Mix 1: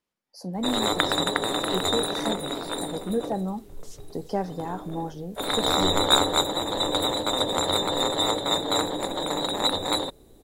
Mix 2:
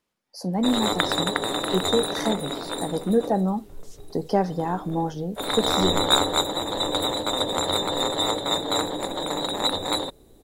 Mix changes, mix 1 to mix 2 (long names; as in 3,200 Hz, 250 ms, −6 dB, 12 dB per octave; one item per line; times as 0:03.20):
speech +6.0 dB
second sound −3.5 dB